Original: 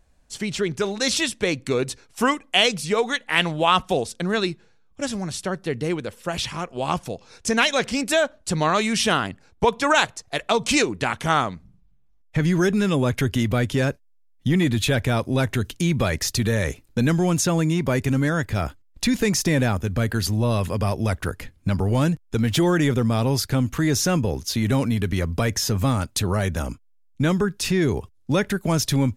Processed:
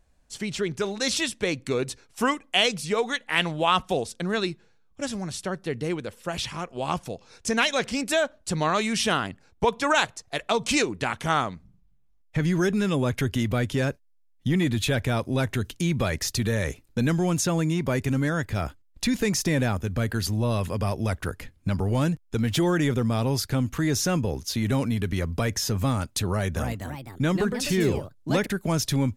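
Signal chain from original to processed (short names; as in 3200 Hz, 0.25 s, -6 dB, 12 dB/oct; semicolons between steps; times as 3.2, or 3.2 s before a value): 26.26–28.53 echoes that change speed 0.297 s, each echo +3 st, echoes 2, each echo -6 dB; gain -3.5 dB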